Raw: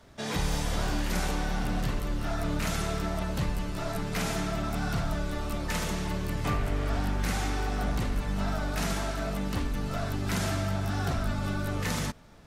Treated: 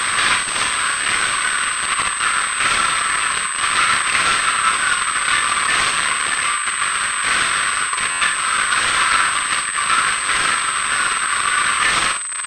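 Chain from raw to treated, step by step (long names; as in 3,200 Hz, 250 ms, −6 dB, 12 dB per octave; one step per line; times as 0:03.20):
reverb reduction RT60 0.96 s
compressor whose output falls as the input rises −38 dBFS, ratio −0.5
fuzz pedal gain 60 dB, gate −52 dBFS
linear-phase brick-wall high-pass 1,000 Hz
double-tracking delay 40 ms −12 dB
ambience of single reflections 54 ms −6 dB, 78 ms −16.5 dB
buffer that repeats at 0:08.10, samples 512, times 8
switching amplifier with a slow clock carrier 8,200 Hz
level +4 dB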